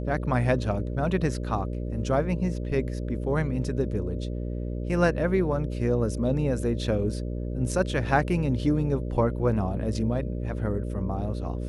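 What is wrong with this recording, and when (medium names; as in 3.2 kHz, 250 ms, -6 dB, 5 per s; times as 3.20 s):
buzz 60 Hz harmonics 10 -31 dBFS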